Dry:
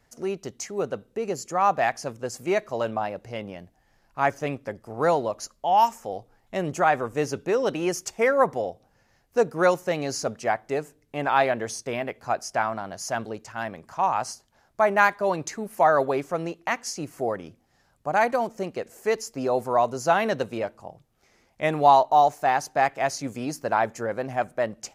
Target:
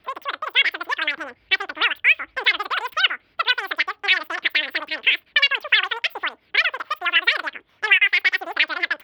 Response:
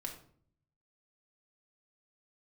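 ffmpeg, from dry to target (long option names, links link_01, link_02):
-filter_complex "[0:a]highshelf=frequency=1700:width_type=q:width=3:gain=-13.5,asetrate=121716,aresample=44100,acrossover=split=1800|3600[link_01][link_02][link_03];[link_01]acompressor=threshold=-31dB:ratio=4[link_04];[link_02]acompressor=threshold=-19dB:ratio=4[link_05];[link_03]acompressor=threshold=-29dB:ratio=4[link_06];[link_04][link_05][link_06]amix=inputs=3:normalize=0,volume=3.5dB"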